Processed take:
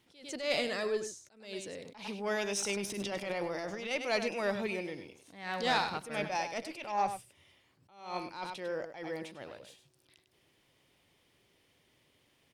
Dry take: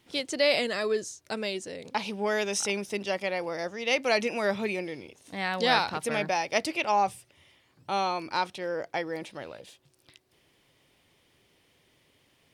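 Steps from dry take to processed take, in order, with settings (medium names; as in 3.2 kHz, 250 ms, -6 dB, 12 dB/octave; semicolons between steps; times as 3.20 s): single-diode clipper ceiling -13.5 dBFS; 2.76–3.91 s: transient shaper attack -11 dB, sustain +10 dB; on a send: delay 100 ms -10 dB; on the sum: attacks held to a fixed rise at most 110 dB/s; trim -4.5 dB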